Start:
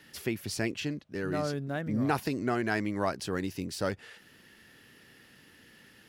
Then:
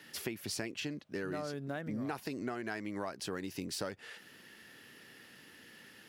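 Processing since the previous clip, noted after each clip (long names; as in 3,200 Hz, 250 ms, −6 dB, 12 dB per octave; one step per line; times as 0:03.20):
high-pass filter 200 Hz 6 dB per octave
downward compressor 10 to 1, threshold −36 dBFS, peak gain reduction 13.5 dB
level +1.5 dB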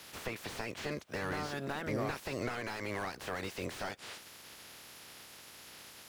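ceiling on every frequency bin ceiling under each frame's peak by 22 dB
slew-rate limiting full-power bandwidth 16 Hz
level +4 dB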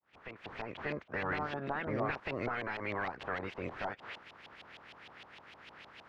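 fade in at the beginning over 0.80 s
auto-filter low-pass saw up 6.5 Hz 760–3,300 Hz
level −1 dB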